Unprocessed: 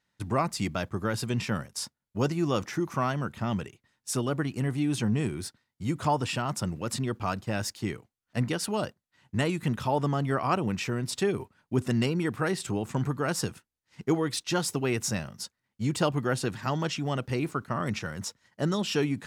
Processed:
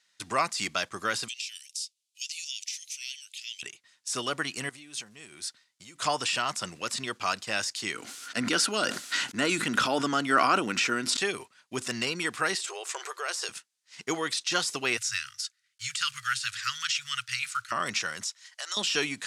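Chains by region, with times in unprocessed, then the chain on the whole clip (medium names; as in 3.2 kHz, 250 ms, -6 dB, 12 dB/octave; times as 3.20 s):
1.28–3.63 s: steep high-pass 2.5 kHz 48 dB/octave + compression 12:1, threshold -43 dBFS
4.69–6.02 s: block-companded coder 7-bit + compression 20:1, threshold -40 dBFS
7.94–11.17 s: bass shelf 88 Hz -8 dB + small resonant body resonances 270/1400 Hz, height 11 dB, ringing for 25 ms + decay stretcher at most 30 dB/s
12.55–13.49 s: brick-wall FIR high-pass 340 Hz + compression 3:1, threshold -32 dBFS
14.97–17.72 s: block-companded coder 7-bit + Chebyshev band-stop 120–1300 Hz, order 4
18.23–18.77 s: high-pass 600 Hz 24 dB/octave + tilt shelf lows -5.5 dB, about 940 Hz + compression 4:1, threshold -41 dBFS
whole clip: band-stop 880 Hz, Q 12; de-esser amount 100%; frequency weighting ITU-R 468; trim +2.5 dB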